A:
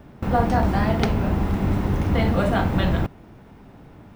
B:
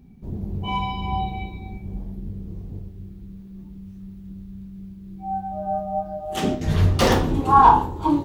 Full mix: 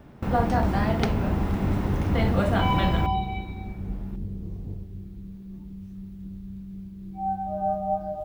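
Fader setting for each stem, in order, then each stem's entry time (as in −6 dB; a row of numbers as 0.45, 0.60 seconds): −3.0, −0.5 decibels; 0.00, 1.95 seconds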